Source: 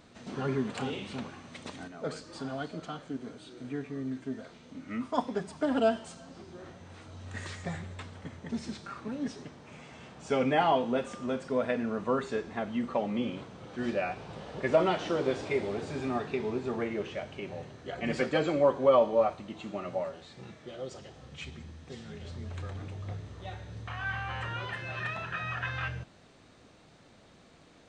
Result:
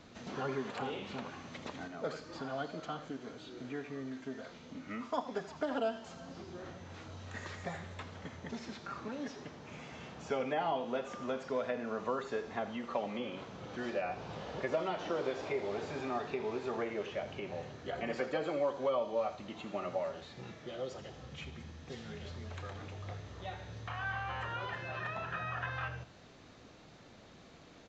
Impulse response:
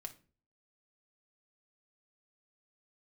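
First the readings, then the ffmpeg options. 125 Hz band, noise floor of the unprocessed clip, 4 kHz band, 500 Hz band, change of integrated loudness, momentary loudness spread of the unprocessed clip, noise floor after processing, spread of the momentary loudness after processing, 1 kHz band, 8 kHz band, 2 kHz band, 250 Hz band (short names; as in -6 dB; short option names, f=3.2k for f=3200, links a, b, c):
-6.5 dB, -58 dBFS, -4.5 dB, -6.5 dB, -7.0 dB, 20 LU, -57 dBFS, 13 LU, -5.0 dB, n/a, -4.5 dB, -8.0 dB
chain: -filter_complex "[0:a]acrossover=split=440|1400|3100[a][b][c][d];[a]acompressor=threshold=-46dB:ratio=4[e];[b]acompressor=threshold=-35dB:ratio=4[f];[c]acompressor=threshold=-52dB:ratio=4[g];[d]acompressor=threshold=-57dB:ratio=4[h];[e][f][g][h]amix=inputs=4:normalize=0,aecho=1:1:81:0.188,aresample=16000,aresample=44100,volume=1dB"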